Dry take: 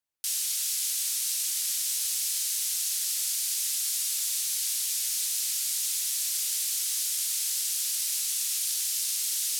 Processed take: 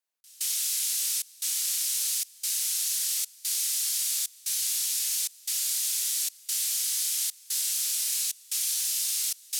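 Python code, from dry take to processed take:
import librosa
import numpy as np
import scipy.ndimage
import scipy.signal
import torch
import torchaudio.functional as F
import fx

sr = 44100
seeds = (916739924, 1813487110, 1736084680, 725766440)

p1 = x + fx.room_flutter(x, sr, wall_m=5.4, rt60_s=0.28, dry=0)
p2 = fx.step_gate(p1, sr, bpm=74, pattern='x.xxxx.xxx', floor_db=-24.0, edge_ms=4.5)
y = scipy.signal.sosfilt(scipy.signal.butter(2, 360.0, 'highpass', fs=sr, output='sos'), p2)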